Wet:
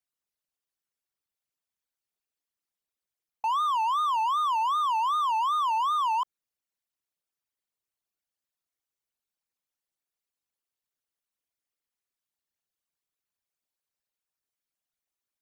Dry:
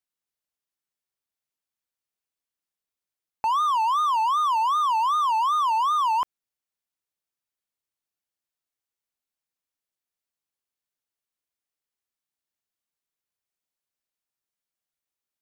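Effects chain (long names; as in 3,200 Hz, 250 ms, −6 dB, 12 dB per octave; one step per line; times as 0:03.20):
spectral envelope exaggerated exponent 2
hard clipping −22.5 dBFS, distortion −16 dB
level −1.5 dB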